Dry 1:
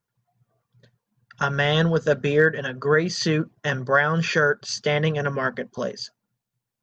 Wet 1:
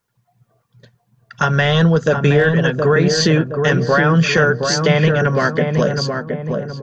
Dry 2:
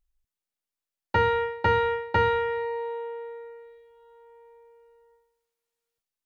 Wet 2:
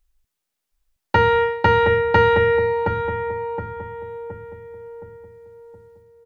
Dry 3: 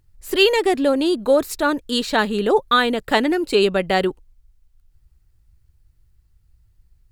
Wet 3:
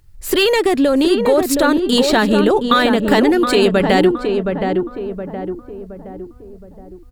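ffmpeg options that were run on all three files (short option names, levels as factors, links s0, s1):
-filter_complex "[0:a]apsyclip=4.47,acompressor=threshold=0.316:ratio=2.5,adynamicequalizer=threshold=0.0282:dfrequency=160:dqfactor=1.4:tfrequency=160:tqfactor=1.4:attack=5:release=100:ratio=0.375:range=2:mode=boostabove:tftype=bell,asplit=2[s0][s1];[s1]adelay=719,lowpass=f=1200:p=1,volume=0.631,asplit=2[s2][s3];[s3]adelay=719,lowpass=f=1200:p=1,volume=0.48,asplit=2[s4][s5];[s5]adelay=719,lowpass=f=1200:p=1,volume=0.48,asplit=2[s6][s7];[s7]adelay=719,lowpass=f=1200:p=1,volume=0.48,asplit=2[s8][s9];[s9]adelay=719,lowpass=f=1200:p=1,volume=0.48,asplit=2[s10][s11];[s11]adelay=719,lowpass=f=1200:p=1,volume=0.48[s12];[s2][s4][s6][s8][s10][s12]amix=inputs=6:normalize=0[s13];[s0][s13]amix=inputs=2:normalize=0,volume=0.668"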